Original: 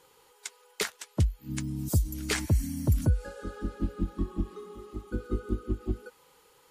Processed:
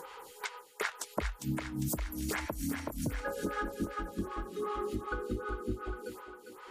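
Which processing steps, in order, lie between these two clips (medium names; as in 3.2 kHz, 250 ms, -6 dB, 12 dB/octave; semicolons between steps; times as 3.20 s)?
gate with hold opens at -48 dBFS; in parallel at +2 dB: upward compressor, threshold -28 dBFS; on the sum: peak limiter -17.5 dBFS, peak gain reduction 10.5 dB; compression 2.5:1, threshold -32 dBFS, peak gain reduction 8 dB; peaking EQ 1.3 kHz +6.5 dB 2.2 oct; on a send: thinning echo 403 ms, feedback 62%, high-pass 290 Hz, level -8 dB; on the sum: lamp-driven phase shifter 2.6 Hz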